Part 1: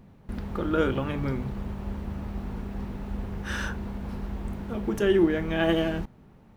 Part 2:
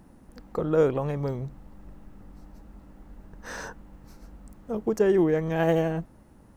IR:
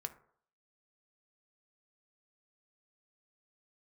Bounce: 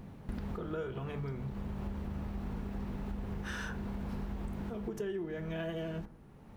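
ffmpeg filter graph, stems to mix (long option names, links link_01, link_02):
-filter_complex "[0:a]volume=1.5dB,asplit=2[link_01][link_02];[link_02]volume=-9.5dB[link_03];[1:a]volume=-11.5dB,asplit=2[link_04][link_05];[link_05]apad=whole_len=289318[link_06];[link_01][link_06]sidechaincompress=threshold=-55dB:ratio=8:attack=16:release=486[link_07];[2:a]atrim=start_sample=2205[link_08];[link_03][link_08]afir=irnorm=-1:irlink=0[link_09];[link_07][link_04][link_09]amix=inputs=3:normalize=0,acompressor=threshold=-35dB:ratio=6"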